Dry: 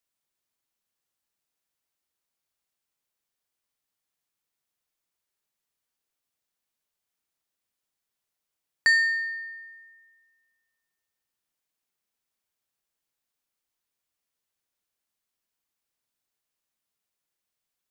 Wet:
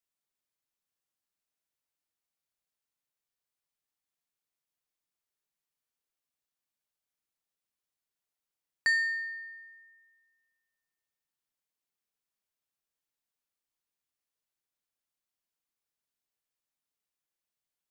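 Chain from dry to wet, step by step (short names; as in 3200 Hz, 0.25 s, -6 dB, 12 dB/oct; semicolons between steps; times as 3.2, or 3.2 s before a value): shoebox room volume 2000 m³, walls furnished, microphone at 0.42 m; gain -6.5 dB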